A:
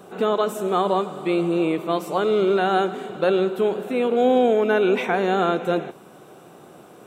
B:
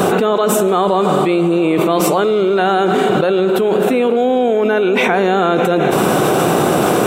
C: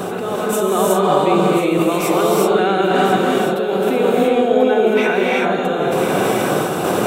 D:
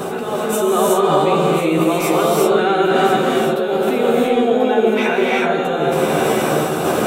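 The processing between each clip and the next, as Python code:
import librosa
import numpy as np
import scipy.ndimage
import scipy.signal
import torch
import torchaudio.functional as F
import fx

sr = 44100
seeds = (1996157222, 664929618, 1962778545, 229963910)

y1 = fx.env_flatten(x, sr, amount_pct=100)
y1 = F.gain(torch.from_numpy(y1), 2.0).numpy()
y2 = fx.tremolo_random(y1, sr, seeds[0], hz=1.9, depth_pct=55)
y2 = y2 + 10.0 ** (-11.0 / 20.0) * np.pad(y2, (int(1040 * sr / 1000.0), 0))[:len(y2)]
y2 = fx.rev_gated(y2, sr, seeds[1], gate_ms=400, shape='rising', drr_db=-3.0)
y2 = F.gain(torch.from_numpy(y2), -4.5).numpy()
y3 = fx.doubler(y2, sr, ms=13.0, db=-4.0)
y3 = F.gain(torch.from_numpy(y3), -1.0).numpy()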